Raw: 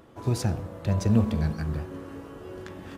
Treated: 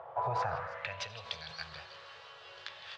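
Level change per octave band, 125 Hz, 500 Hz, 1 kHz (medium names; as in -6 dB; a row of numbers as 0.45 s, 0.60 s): -21.5 dB, -7.5 dB, +5.0 dB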